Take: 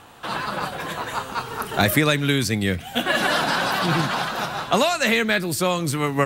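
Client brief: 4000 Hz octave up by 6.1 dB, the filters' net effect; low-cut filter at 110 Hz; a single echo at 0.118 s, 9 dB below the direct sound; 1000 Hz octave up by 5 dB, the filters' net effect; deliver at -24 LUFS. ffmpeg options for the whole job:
-af "highpass=110,equalizer=f=1k:t=o:g=6,equalizer=f=4k:t=o:g=7,aecho=1:1:118:0.355,volume=-6dB"

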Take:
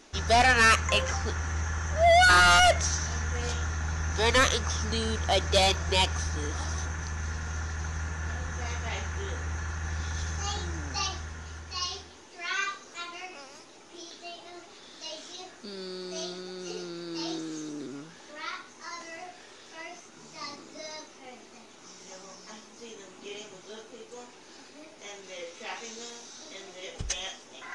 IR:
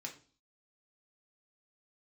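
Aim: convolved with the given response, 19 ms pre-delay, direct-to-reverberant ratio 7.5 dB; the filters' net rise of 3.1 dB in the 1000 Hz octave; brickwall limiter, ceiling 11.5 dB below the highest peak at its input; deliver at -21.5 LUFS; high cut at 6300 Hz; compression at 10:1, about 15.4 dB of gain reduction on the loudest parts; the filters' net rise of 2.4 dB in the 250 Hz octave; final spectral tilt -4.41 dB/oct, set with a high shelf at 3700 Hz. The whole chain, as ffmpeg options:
-filter_complex "[0:a]lowpass=6.3k,equalizer=f=250:t=o:g=3,equalizer=f=1k:t=o:g=5,highshelf=f=3.7k:g=-3.5,acompressor=threshold=-31dB:ratio=10,alimiter=level_in=8.5dB:limit=-24dB:level=0:latency=1,volume=-8.5dB,asplit=2[a][b];[1:a]atrim=start_sample=2205,adelay=19[c];[b][c]afir=irnorm=-1:irlink=0,volume=-5.5dB[d];[a][d]amix=inputs=2:normalize=0,volume=19.5dB"

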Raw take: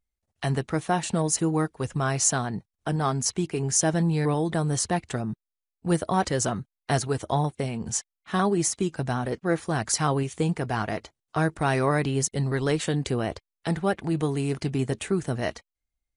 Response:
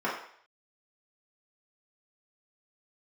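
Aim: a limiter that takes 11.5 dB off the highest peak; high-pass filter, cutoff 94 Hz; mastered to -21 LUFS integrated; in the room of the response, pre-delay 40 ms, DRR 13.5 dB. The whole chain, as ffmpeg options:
-filter_complex "[0:a]highpass=94,alimiter=limit=-20dB:level=0:latency=1,asplit=2[a][b];[1:a]atrim=start_sample=2205,adelay=40[c];[b][c]afir=irnorm=-1:irlink=0,volume=-24.5dB[d];[a][d]amix=inputs=2:normalize=0,volume=10dB"

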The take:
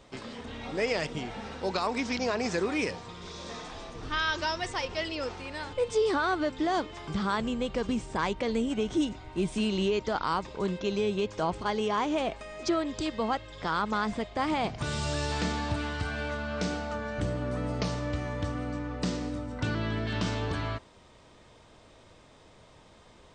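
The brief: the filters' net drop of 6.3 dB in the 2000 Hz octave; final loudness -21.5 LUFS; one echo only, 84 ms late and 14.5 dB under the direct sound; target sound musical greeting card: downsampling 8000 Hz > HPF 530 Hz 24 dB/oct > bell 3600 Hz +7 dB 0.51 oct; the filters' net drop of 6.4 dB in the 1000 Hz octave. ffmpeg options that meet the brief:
-af "equalizer=f=1k:t=o:g=-6.5,equalizer=f=2k:t=o:g=-7,aecho=1:1:84:0.188,aresample=8000,aresample=44100,highpass=f=530:w=0.5412,highpass=f=530:w=1.3066,equalizer=f=3.6k:t=o:w=0.51:g=7,volume=16.5dB"

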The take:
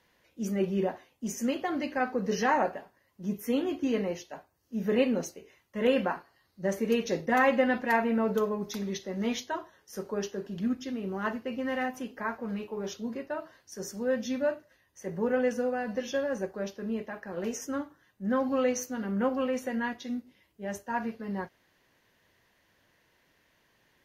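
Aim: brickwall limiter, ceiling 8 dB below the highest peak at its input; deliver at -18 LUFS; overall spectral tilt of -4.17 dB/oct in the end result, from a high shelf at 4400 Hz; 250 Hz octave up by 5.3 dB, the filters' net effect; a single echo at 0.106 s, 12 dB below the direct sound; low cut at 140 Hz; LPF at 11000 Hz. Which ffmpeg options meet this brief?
-af "highpass=140,lowpass=11k,equalizer=f=250:t=o:g=6.5,highshelf=f=4.4k:g=-4.5,alimiter=limit=-18dB:level=0:latency=1,aecho=1:1:106:0.251,volume=11.5dB"

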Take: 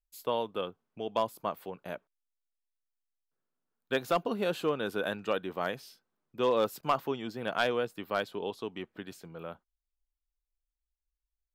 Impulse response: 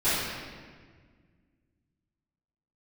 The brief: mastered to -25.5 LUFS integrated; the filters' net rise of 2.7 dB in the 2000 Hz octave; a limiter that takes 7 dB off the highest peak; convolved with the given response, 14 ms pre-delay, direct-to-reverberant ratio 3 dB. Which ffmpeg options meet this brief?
-filter_complex "[0:a]equalizer=f=2k:t=o:g=4,alimiter=limit=-22dB:level=0:latency=1,asplit=2[a][b];[1:a]atrim=start_sample=2205,adelay=14[c];[b][c]afir=irnorm=-1:irlink=0,volume=-17.5dB[d];[a][d]amix=inputs=2:normalize=0,volume=9dB"

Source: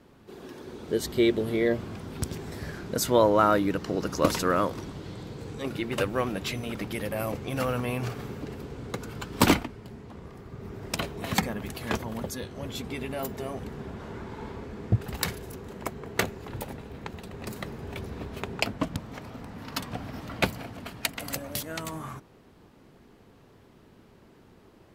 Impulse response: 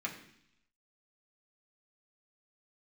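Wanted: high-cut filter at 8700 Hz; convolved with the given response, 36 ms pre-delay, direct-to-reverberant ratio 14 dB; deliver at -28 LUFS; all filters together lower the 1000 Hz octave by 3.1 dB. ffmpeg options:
-filter_complex "[0:a]lowpass=8.7k,equalizer=f=1k:t=o:g=-4,asplit=2[a][b];[1:a]atrim=start_sample=2205,adelay=36[c];[b][c]afir=irnorm=-1:irlink=0,volume=-16.5dB[d];[a][d]amix=inputs=2:normalize=0,volume=3dB"

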